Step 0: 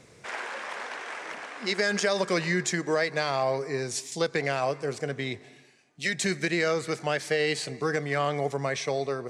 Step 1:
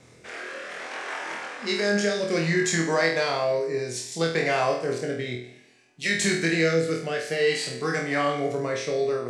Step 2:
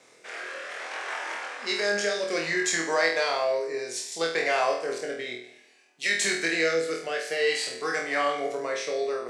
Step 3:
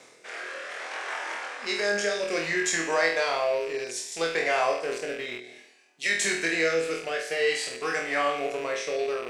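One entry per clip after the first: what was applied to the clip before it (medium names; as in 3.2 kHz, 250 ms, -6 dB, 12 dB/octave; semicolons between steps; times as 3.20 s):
rotary cabinet horn 0.6 Hz; on a send: flutter echo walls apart 4.2 m, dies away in 0.51 s; on the sum: trim +2 dB
high-pass 450 Hz 12 dB/octave
rattle on loud lows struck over -48 dBFS, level -29 dBFS; reverse; upward compressor, threshold -41 dBFS; reverse; dynamic bell 4.3 kHz, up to -4 dB, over -46 dBFS, Q 4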